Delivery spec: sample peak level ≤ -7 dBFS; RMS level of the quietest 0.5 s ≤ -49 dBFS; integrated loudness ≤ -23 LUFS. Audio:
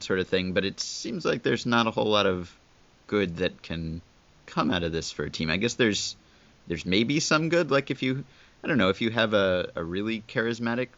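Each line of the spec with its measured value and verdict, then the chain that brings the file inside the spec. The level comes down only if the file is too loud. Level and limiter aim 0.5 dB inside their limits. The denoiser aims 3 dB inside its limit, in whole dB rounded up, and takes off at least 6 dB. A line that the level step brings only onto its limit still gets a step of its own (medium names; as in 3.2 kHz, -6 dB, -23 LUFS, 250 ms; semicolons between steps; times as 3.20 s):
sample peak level -8.5 dBFS: pass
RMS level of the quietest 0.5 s -59 dBFS: pass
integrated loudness -26.5 LUFS: pass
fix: none needed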